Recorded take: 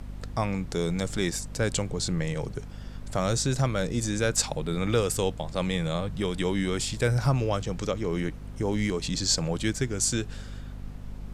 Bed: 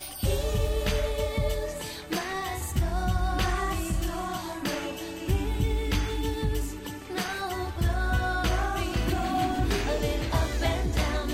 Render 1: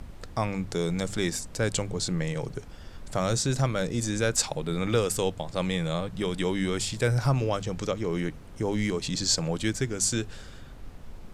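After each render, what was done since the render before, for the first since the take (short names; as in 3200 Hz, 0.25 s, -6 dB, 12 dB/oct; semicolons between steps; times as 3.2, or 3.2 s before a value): de-hum 50 Hz, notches 5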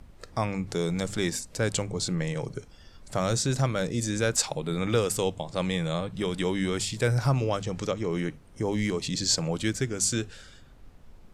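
noise print and reduce 8 dB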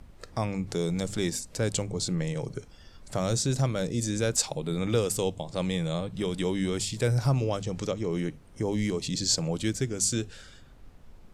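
dynamic EQ 1500 Hz, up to -6 dB, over -43 dBFS, Q 0.77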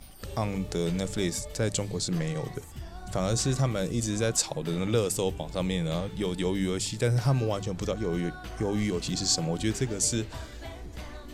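add bed -14.5 dB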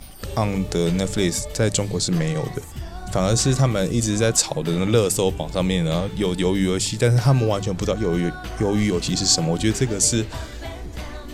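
gain +8 dB; limiter -3 dBFS, peak gain reduction 1.5 dB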